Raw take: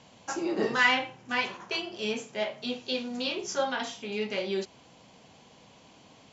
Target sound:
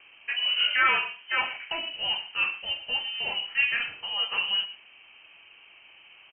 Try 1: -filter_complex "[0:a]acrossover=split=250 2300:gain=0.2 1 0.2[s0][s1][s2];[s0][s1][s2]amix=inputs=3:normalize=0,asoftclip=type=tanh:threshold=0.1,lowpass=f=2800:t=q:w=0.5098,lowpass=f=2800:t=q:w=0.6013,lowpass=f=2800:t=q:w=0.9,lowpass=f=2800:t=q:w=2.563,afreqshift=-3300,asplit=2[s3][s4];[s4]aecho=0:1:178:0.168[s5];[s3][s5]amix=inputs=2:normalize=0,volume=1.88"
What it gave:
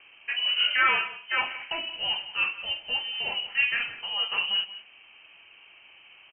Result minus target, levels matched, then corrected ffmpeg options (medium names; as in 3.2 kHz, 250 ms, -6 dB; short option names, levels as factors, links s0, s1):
echo 63 ms late
-filter_complex "[0:a]acrossover=split=250 2300:gain=0.2 1 0.2[s0][s1][s2];[s0][s1][s2]amix=inputs=3:normalize=0,asoftclip=type=tanh:threshold=0.1,lowpass=f=2800:t=q:w=0.5098,lowpass=f=2800:t=q:w=0.6013,lowpass=f=2800:t=q:w=0.9,lowpass=f=2800:t=q:w=2.563,afreqshift=-3300,asplit=2[s3][s4];[s4]aecho=0:1:115:0.168[s5];[s3][s5]amix=inputs=2:normalize=0,volume=1.88"